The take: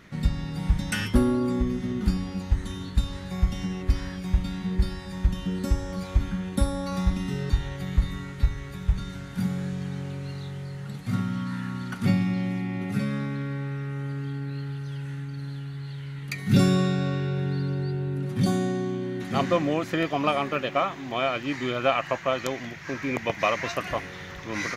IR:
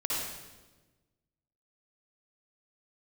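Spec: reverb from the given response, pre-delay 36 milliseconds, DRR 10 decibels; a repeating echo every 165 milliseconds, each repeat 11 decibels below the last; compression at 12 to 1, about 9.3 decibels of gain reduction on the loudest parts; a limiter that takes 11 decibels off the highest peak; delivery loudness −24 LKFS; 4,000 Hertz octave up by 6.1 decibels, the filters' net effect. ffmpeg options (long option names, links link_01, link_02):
-filter_complex "[0:a]equalizer=frequency=4000:width_type=o:gain=8,acompressor=threshold=-24dB:ratio=12,alimiter=limit=-21.5dB:level=0:latency=1,aecho=1:1:165|330|495:0.282|0.0789|0.0221,asplit=2[link_01][link_02];[1:a]atrim=start_sample=2205,adelay=36[link_03];[link_02][link_03]afir=irnorm=-1:irlink=0,volume=-17dB[link_04];[link_01][link_04]amix=inputs=2:normalize=0,volume=7dB"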